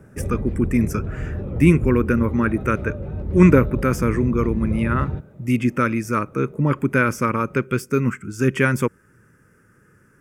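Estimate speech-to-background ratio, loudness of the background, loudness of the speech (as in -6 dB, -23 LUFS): 7.5 dB, -28.0 LUFS, -20.5 LUFS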